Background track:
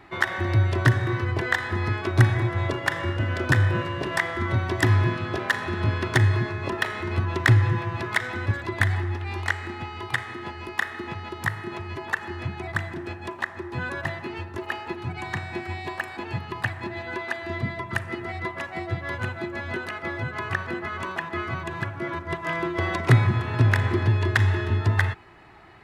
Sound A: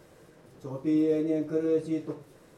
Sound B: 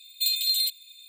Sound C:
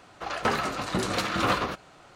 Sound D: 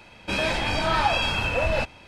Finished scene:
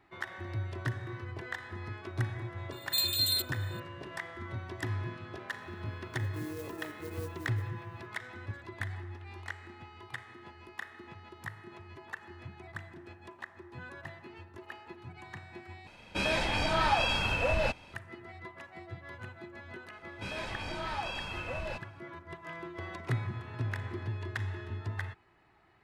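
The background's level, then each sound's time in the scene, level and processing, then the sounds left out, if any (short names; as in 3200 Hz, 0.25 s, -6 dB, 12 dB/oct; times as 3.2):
background track -15.5 dB
2.72 add B -4.5 dB
5.49 add A -17 dB + clock jitter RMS 0.087 ms
15.87 replace with D -5 dB
19.93 add D -14.5 dB
not used: C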